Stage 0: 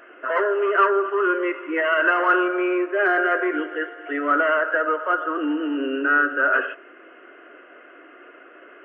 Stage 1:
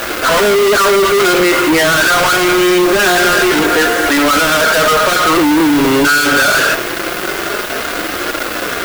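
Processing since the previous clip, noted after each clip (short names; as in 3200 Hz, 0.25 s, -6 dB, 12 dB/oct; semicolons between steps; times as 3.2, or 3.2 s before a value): fuzz box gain 47 dB, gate -46 dBFS; flange 0.24 Hz, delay 3.5 ms, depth 3.7 ms, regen -46%; added noise blue -36 dBFS; gain +7 dB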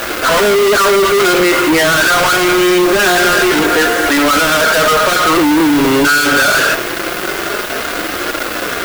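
nothing audible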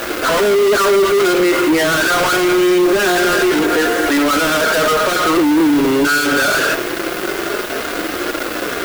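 bell 350 Hz +5.5 dB 1.2 oct; limiter -4 dBFS, peak gain reduction 3.5 dB; gain -4 dB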